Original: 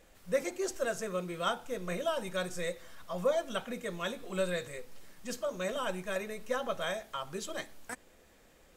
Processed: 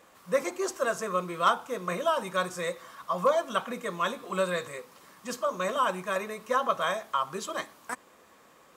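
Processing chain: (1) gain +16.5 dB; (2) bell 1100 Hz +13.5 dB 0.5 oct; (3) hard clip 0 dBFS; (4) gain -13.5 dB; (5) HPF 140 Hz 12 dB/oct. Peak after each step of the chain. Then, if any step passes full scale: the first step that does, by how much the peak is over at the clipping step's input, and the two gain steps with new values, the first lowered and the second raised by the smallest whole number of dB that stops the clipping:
-0.5, +4.5, 0.0, -13.5, -12.5 dBFS; step 2, 4.5 dB; step 1 +11.5 dB, step 4 -8.5 dB

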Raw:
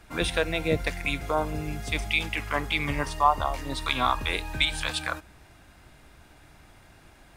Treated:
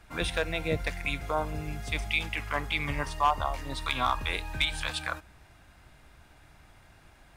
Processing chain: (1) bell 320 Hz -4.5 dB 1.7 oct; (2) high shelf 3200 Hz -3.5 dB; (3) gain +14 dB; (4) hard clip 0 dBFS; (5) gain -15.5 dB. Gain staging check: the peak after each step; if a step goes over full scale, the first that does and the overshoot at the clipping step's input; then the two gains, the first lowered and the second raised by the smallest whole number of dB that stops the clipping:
-8.0, -8.0, +6.0, 0.0, -15.5 dBFS; step 3, 6.0 dB; step 3 +8 dB, step 5 -9.5 dB

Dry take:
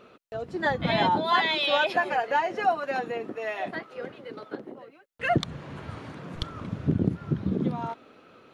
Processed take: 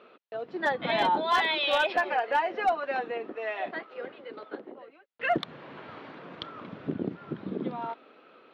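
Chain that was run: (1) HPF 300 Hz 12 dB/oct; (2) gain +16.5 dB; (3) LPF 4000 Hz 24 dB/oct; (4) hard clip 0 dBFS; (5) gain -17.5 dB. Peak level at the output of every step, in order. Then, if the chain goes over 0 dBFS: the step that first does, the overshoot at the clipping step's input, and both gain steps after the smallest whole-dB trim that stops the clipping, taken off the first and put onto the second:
-11.5, +5.0, +5.5, 0.0, -17.5 dBFS; step 2, 5.5 dB; step 2 +10.5 dB, step 5 -11.5 dB

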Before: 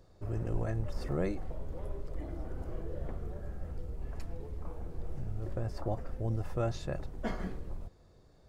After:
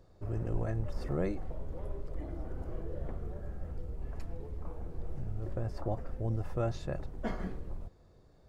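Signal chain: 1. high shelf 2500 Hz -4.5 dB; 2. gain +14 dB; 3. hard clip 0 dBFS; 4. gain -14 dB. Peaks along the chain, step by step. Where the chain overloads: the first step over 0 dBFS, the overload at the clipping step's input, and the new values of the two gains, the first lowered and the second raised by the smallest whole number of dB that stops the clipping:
-19.5, -5.5, -5.5, -19.5 dBFS; no overload

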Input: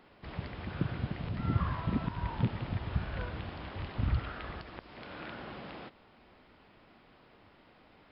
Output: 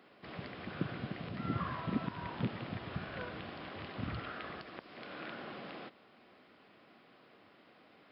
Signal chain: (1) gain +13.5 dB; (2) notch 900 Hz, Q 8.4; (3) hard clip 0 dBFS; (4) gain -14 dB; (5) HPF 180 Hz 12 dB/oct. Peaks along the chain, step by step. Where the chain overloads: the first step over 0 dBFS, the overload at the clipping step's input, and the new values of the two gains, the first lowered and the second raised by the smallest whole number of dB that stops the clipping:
-2.0, -2.0, -2.0, -16.0, -20.5 dBFS; no overload

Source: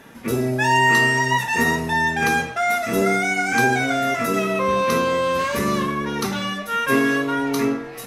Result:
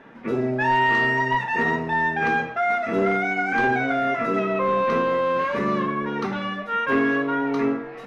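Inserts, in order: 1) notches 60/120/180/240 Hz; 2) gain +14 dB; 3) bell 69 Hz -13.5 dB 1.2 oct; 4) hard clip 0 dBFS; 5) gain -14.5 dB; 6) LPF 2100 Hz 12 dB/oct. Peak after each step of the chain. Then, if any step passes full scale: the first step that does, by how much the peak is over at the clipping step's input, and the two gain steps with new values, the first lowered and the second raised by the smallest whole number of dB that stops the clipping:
-5.5, +8.5, +8.5, 0.0, -14.5, -14.0 dBFS; step 2, 8.5 dB; step 2 +5 dB, step 5 -5.5 dB

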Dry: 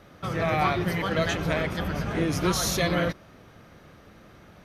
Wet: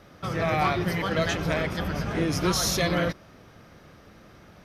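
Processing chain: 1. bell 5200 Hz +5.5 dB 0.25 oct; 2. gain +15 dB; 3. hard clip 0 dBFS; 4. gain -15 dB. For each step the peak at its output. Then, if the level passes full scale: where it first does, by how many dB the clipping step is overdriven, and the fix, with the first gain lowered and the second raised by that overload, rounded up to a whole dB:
-11.5, +3.5, 0.0, -15.0 dBFS; step 2, 3.5 dB; step 2 +11 dB, step 4 -11 dB

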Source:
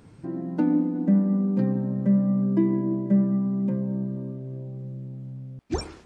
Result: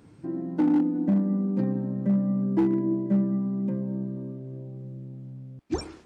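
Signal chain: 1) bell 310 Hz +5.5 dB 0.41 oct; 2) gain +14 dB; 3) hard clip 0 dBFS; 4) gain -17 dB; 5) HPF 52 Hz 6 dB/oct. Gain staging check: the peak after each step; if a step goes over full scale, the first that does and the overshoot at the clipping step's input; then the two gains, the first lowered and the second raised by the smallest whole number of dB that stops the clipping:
-7.0, +7.0, 0.0, -17.0, -15.5 dBFS; step 2, 7.0 dB; step 2 +7 dB, step 4 -10 dB

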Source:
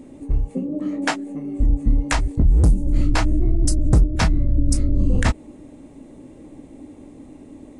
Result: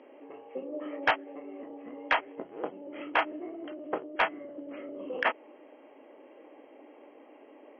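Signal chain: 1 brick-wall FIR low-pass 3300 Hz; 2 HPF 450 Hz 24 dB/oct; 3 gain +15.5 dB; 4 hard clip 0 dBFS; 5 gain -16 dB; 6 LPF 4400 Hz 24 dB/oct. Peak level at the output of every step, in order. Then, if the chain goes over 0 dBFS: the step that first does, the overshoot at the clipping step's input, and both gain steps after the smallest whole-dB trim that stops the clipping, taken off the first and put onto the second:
-7.0, -8.5, +7.0, 0.0, -16.0, -14.5 dBFS; step 3, 7.0 dB; step 3 +8.5 dB, step 5 -9 dB

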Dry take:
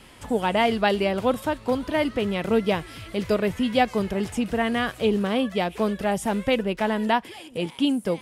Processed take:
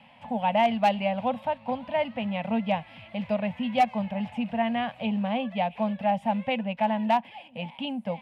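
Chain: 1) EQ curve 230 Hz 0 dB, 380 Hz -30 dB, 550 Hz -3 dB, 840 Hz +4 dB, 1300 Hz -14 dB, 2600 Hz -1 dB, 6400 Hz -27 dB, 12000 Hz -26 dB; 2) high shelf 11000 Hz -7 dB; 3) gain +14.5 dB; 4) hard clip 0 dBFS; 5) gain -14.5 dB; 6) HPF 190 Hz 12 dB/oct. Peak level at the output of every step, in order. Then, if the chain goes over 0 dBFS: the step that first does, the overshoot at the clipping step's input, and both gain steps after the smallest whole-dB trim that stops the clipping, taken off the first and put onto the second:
-10.0, -10.0, +4.5, 0.0, -14.5, -11.5 dBFS; step 3, 4.5 dB; step 3 +9.5 dB, step 5 -9.5 dB

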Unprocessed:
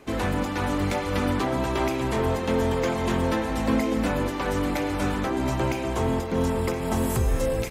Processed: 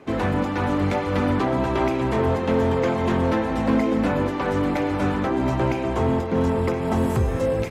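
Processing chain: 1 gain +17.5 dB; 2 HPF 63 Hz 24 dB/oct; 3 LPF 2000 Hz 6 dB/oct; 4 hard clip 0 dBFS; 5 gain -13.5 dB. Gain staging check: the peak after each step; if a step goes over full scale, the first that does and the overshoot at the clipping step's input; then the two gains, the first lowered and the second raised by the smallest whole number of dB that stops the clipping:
+3.5, +5.0, +4.5, 0.0, -13.5 dBFS; step 1, 4.5 dB; step 1 +12.5 dB, step 5 -8.5 dB

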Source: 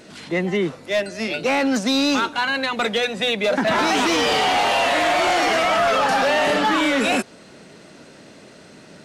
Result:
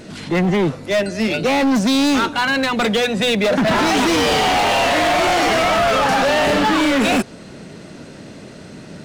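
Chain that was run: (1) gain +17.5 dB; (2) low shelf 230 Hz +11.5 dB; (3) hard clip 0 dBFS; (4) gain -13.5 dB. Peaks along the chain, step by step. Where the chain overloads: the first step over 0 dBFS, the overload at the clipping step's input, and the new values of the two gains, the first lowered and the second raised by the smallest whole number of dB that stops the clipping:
+4.0, +9.5, 0.0, -13.5 dBFS; step 1, 9.5 dB; step 1 +7.5 dB, step 4 -3.5 dB

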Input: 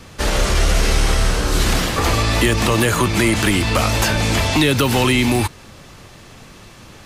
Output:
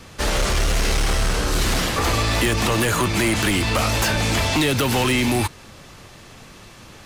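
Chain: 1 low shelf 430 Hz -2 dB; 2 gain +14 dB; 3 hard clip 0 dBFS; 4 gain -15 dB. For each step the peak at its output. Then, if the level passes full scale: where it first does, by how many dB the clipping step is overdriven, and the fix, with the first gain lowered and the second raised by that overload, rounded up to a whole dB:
-5.5, +8.5, 0.0, -15.0 dBFS; step 2, 8.5 dB; step 2 +5 dB, step 4 -6 dB

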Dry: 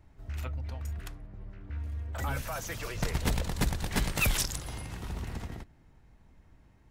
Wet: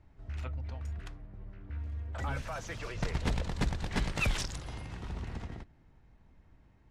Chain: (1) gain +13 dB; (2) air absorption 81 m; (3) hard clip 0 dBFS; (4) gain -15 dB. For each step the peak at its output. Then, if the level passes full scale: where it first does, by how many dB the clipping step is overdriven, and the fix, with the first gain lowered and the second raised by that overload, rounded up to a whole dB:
-2.0, -2.5, -2.5, -17.5 dBFS; no overload

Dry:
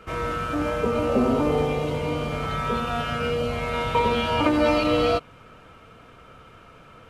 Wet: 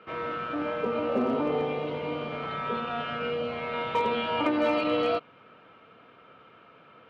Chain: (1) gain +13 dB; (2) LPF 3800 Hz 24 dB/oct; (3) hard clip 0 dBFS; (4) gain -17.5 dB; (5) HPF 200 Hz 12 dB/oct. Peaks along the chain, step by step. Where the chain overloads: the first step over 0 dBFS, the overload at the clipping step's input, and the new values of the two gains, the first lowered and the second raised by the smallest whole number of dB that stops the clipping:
+4.5, +4.5, 0.0, -17.5, -14.5 dBFS; step 1, 4.5 dB; step 1 +8 dB, step 4 -12.5 dB

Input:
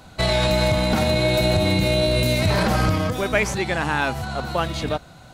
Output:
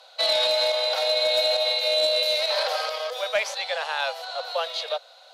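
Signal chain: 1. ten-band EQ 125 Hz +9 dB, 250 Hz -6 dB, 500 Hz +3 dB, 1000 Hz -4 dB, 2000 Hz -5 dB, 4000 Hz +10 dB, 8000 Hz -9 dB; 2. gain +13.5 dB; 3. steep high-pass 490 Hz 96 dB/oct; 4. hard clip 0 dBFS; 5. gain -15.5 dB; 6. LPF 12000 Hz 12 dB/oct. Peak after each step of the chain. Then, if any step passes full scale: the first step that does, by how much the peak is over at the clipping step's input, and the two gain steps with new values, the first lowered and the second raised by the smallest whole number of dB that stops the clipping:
-4.5, +9.0, +5.5, 0.0, -15.5, -15.0 dBFS; step 2, 5.5 dB; step 2 +7.5 dB, step 5 -9.5 dB

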